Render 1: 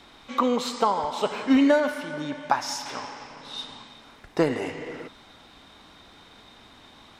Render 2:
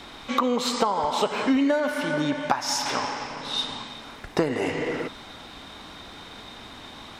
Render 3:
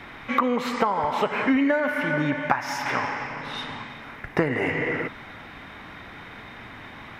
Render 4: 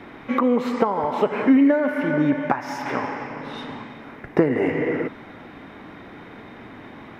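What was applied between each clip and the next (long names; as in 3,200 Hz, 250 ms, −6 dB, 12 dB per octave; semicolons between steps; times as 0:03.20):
downward compressor 5 to 1, threshold −29 dBFS, peak gain reduction 12.5 dB; level +8.5 dB
octave-band graphic EQ 125/2,000/4,000/8,000 Hz +7/+11/−9/−11 dB; level −1 dB
parametric band 330 Hz +13 dB 2.6 octaves; level −6 dB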